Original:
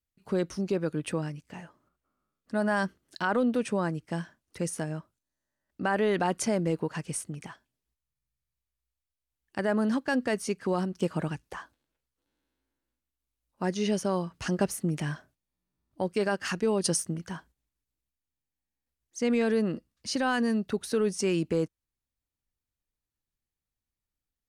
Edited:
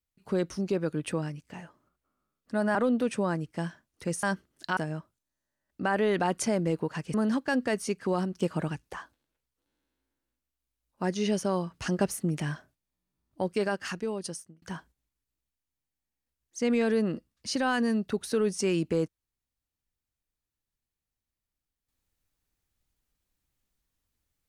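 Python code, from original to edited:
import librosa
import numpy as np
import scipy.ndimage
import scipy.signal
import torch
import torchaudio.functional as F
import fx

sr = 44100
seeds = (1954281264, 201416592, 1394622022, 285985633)

y = fx.edit(x, sr, fx.move(start_s=2.75, length_s=0.54, to_s=4.77),
    fx.cut(start_s=7.14, length_s=2.6),
    fx.fade_out_span(start_s=16.13, length_s=1.09), tone=tone)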